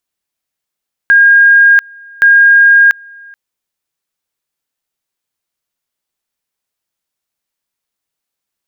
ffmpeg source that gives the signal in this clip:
ffmpeg -f lavfi -i "aevalsrc='pow(10,(-2.5-29*gte(mod(t,1.12),0.69))/20)*sin(2*PI*1620*t)':duration=2.24:sample_rate=44100" out.wav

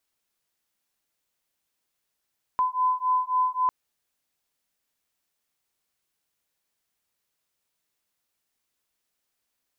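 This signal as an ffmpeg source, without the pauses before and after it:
ffmpeg -f lavfi -i "aevalsrc='0.0596*(sin(2*PI*1010*t)+sin(2*PI*1013.7*t))':duration=1.1:sample_rate=44100" out.wav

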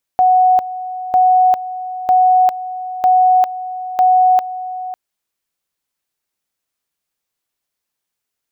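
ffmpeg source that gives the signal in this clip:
ffmpeg -f lavfi -i "aevalsrc='pow(10,(-7.5-14.5*gte(mod(t,0.95),0.4))/20)*sin(2*PI*739*t)':duration=4.75:sample_rate=44100" out.wav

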